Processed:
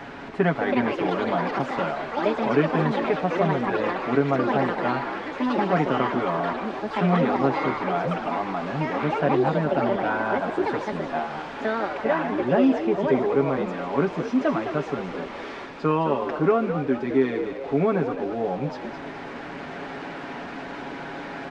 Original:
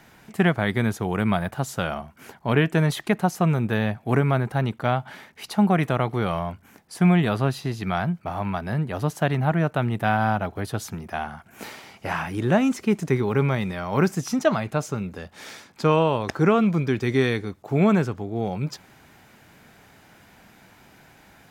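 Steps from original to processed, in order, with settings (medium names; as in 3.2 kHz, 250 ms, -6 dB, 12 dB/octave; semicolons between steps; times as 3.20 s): jump at every zero crossing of -32 dBFS; high-pass 200 Hz 24 dB/octave; comb 7.2 ms, depth 73%; in parallel at -1.5 dB: gain riding 2 s; on the sum: bit crusher 5-bit; on a send: frequency-shifting echo 212 ms, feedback 48%, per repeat +71 Hz, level -9 dB; on the sum: ever faster or slower copies 443 ms, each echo +6 st, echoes 3; tape spacing loss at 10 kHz 39 dB; trim -6 dB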